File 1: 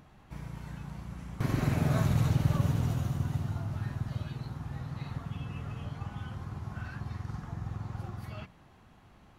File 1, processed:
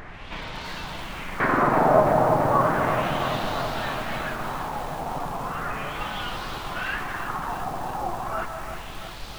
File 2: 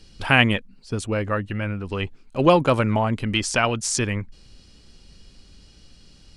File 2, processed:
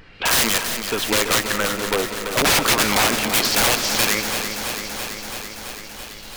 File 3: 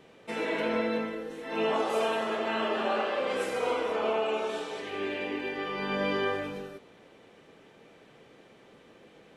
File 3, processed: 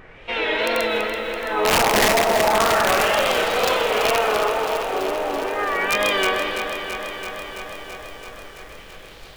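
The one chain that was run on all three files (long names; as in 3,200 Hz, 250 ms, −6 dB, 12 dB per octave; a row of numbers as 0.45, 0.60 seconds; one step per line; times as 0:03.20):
high-pass filter 420 Hz 12 dB per octave
background noise brown −54 dBFS
wrap-around overflow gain 13 dB
bit-depth reduction 10 bits, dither triangular
auto-filter low-pass sine 0.35 Hz 760–4,100 Hz
wrap-around overflow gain 19.5 dB
tape wow and flutter 78 cents
comb and all-pass reverb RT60 0.88 s, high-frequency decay 0.45×, pre-delay 115 ms, DRR 11 dB
feedback echo at a low word length 333 ms, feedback 80%, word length 9 bits, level −8.5 dB
normalise the peak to −6 dBFS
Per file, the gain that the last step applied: +15.0, +8.5, +8.5 decibels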